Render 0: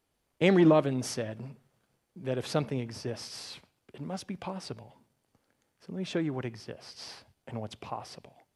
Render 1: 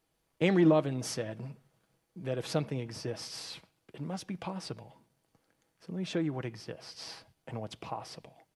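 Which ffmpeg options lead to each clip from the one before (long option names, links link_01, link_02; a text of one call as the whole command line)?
ffmpeg -i in.wav -filter_complex "[0:a]asplit=2[link_01][link_02];[link_02]acompressor=threshold=-34dB:ratio=6,volume=-1.5dB[link_03];[link_01][link_03]amix=inputs=2:normalize=0,aecho=1:1:6.2:0.33,volume=-5.5dB" out.wav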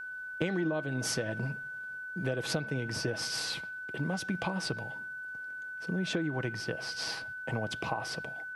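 ffmpeg -i in.wav -af "acompressor=threshold=-36dB:ratio=12,aeval=exprs='val(0)+0.00501*sin(2*PI*1500*n/s)':channel_layout=same,volume=7.5dB" out.wav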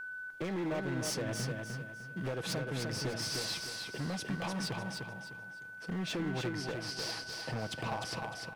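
ffmpeg -i in.wav -af "volume=30.5dB,asoftclip=hard,volume=-30.5dB,aecho=1:1:303|606|909|1212:0.596|0.197|0.0649|0.0214,volume=-1.5dB" out.wav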